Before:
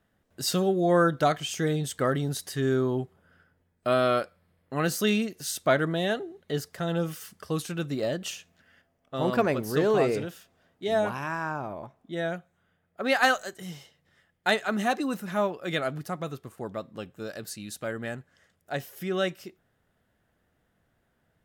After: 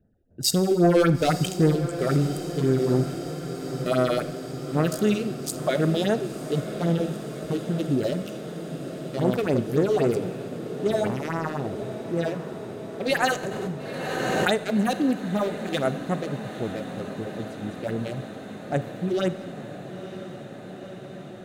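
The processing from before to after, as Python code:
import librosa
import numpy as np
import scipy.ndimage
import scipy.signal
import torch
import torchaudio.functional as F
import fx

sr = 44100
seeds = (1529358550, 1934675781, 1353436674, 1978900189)

p1 = fx.wiener(x, sr, points=41)
p2 = fx.high_shelf(p1, sr, hz=6100.0, db=5.0)
p3 = fx.leveller(p2, sr, passes=2, at=(0.71, 1.76))
p4 = fx.over_compress(p3, sr, threshold_db=-29.0, ratio=-1.0)
p5 = p3 + F.gain(torch.from_numpy(p4), -1.0).numpy()
p6 = fx.phaser_stages(p5, sr, stages=4, low_hz=140.0, high_hz=4300.0, hz=3.8, feedback_pct=30)
p7 = p6 + fx.echo_diffused(p6, sr, ms=954, feedback_pct=78, wet_db=-12, dry=0)
p8 = fx.rev_schroeder(p7, sr, rt60_s=1.5, comb_ms=31, drr_db=13.0)
y = fx.pre_swell(p8, sr, db_per_s=21.0, at=(13.43, 14.57))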